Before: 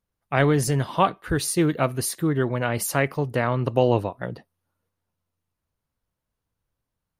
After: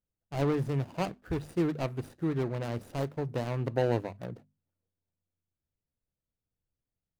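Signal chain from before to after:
running median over 41 samples
mains-hum notches 50/100/150/200/250 Hz
level −6.5 dB

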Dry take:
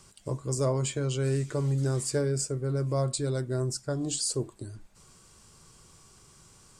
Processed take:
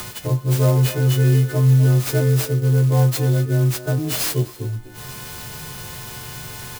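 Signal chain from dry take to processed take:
every partial snapped to a pitch grid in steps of 3 semitones
low-pass filter 4,200 Hz 12 dB per octave
parametric band 120 Hz +11 dB 0.47 octaves
hum removal 177.8 Hz, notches 11
far-end echo of a speakerphone 250 ms, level −11 dB
upward compression, threshold −25 dBFS
converter with an unsteady clock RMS 0.053 ms
level +6 dB

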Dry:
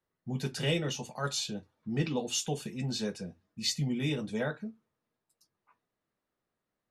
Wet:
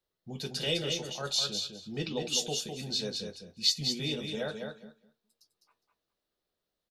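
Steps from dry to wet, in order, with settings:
octave-band graphic EQ 125/250/1,000/2,000/4,000/8,000 Hz −9/−7/−7/−7/+7/−5 dB
on a send: repeating echo 205 ms, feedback 16%, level −5.5 dB
on the sum: level +2.5 dB

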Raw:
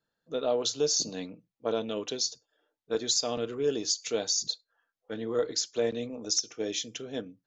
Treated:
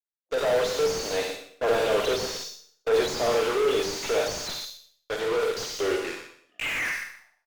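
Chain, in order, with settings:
turntable brake at the end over 1.92 s
source passing by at 0:02.55, 6 m/s, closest 4.3 metres
noise gate with hold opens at −60 dBFS
high-pass filter 460 Hz 24 dB per octave
in parallel at −11 dB: fuzz pedal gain 55 dB, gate −55 dBFS
on the sum: pitch vibrato 0.79 Hz 11 cents
on a send: repeating echo 122 ms, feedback 16%, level −11.5 dB
on the sum: four-comb reverb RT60 0.55 s, DRR 3 dB
slew-rate limiting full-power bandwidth 100 Hz

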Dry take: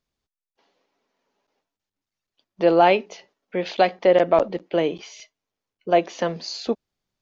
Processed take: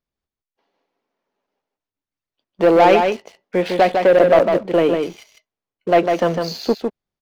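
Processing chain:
high-shelf EQ 4,000 Hz −9.5 dB
leveller curve on the samples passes 2
single-tap delay 153 ms −5 dB

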